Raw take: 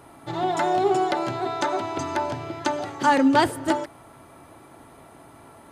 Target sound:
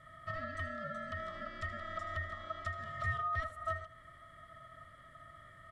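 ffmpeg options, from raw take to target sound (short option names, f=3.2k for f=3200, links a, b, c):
-filter_complex "[0:a]equalizer=f=8.8k:t=o:w=1.3:g=13,acompressor=threshold=-31dB:ratio=4,asplit=3[a][b][c];[a]bandpass=f=300:t=q:w=8,volume=0dB[d];[b]bandpass=f=870:t=q:w=8,volume=-6dB[e];[c]bandpass=f=2.24k:t=q:w=8,volume=-9dB[f];[d][e][f]amix=inputs=3:normalize=0,aeval=exprs='val(0)*sin(2*PI*970*n/s)':c=same,asuperstop=centerf=750:order=4:qfactor=2.8,asplit=2[g][h];[h]aecho=0:1:78:0.2[i];[g][i]amix=inputs=2:normalize=0,volume=6.5dB"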